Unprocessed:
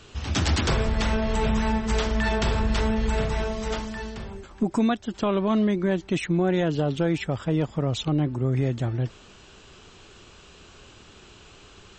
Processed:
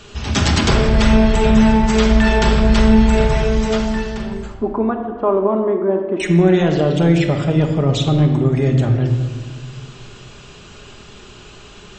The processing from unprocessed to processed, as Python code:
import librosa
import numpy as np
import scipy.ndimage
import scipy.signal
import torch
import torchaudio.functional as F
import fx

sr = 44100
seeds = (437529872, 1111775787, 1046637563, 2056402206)

y = fx.cheby1_bandpass(x, sr, low_hz=340.0, high_hz=1100.0, order=2, at=(4.54, 6.2))
y = fx.room_shoebox(y, sr, seeds[0], volume_m3=1700.0, walls='mixed', distance_m=1.3)
y = y * 10.0 ** (7.0 / 20.0)